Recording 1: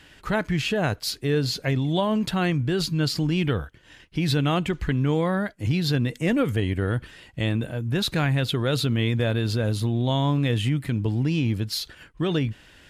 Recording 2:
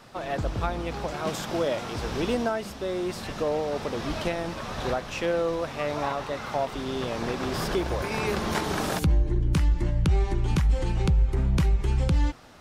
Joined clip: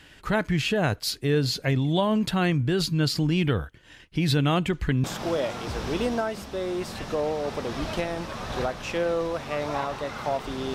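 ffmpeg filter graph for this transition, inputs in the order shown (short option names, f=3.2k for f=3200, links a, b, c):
-filter_complex "[0:a]apad=whole_dur=10.74,atrim=end=10.74,atrim=end=5.042[a];[1:a]atrim=start=1.318:end=7.02[b];[a][b]acrossfade=d=0.004:c1=hsin:c2=hsin"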